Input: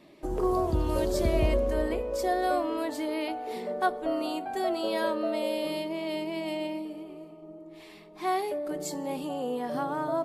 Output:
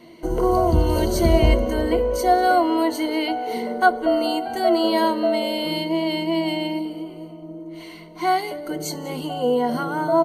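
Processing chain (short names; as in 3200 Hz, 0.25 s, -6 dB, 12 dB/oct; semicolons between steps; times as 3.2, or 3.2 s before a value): ripple EQ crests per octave 1.9, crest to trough 15 dB; echo 0.194 s -20.5 dB; gain +6.5 dB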